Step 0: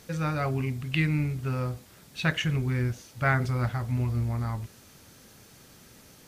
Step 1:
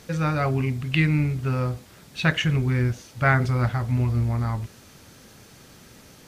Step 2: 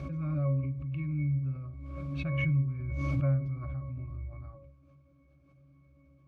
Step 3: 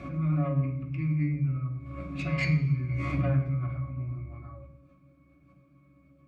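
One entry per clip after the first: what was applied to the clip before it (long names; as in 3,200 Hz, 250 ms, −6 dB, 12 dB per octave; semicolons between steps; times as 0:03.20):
high-shelf EQ 8,600 Hz −6.5 dB; level +5 dB
resonances in every octave C#, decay 0.41 s; background raised ahead of every attack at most 23 dB per second
phase distortion by the signal itself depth 0.2 ms; convolution reverb RT60 0.70 s, pre-delay 3 ms, DRR −3 dB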